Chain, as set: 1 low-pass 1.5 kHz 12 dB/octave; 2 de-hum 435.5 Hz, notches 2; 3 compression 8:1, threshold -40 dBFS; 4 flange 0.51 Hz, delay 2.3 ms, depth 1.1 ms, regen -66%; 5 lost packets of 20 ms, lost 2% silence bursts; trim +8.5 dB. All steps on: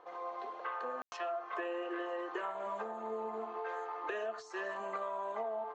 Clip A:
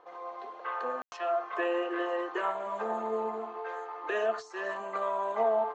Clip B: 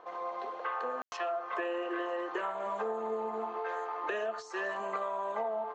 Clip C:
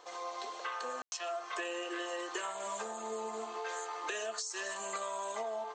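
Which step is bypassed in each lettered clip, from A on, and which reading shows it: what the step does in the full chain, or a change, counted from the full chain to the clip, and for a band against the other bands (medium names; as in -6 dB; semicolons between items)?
3, mean gain reduction 5.0 dB; 4, loudness change +4.0 LU; 1, crest factor change +2.5 dB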